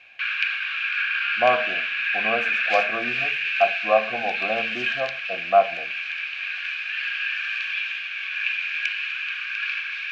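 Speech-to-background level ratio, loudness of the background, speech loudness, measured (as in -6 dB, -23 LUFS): -1.0 dB, -24.5 LUFS, -25.5 LUFS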